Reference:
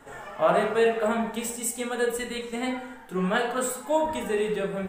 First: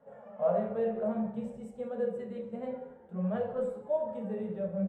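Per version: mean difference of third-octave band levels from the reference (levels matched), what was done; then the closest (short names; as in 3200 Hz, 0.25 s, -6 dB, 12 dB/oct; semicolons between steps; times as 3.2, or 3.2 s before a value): 11.5 dB: flange 0.58 Hz, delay 1.7 ms, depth 8.4 ms, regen +78%; double band-pass 330 Hz, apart 1.4 oct; on a send: frequency-shifting echo 0.179 s, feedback 33%, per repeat -84 Hz, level -22 dB; on the sum: gain +6.5 dB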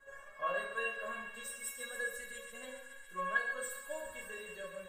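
8.0 dB: bell 1600 Hz +9.5 dB 0.51 oct; resonator 550 Hz, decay 0.21 s, harmonics all, mix 100%; thin delay 0.138 s, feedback 82%, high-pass 1800 Hz, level -10 dB; gain +2.5 dB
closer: second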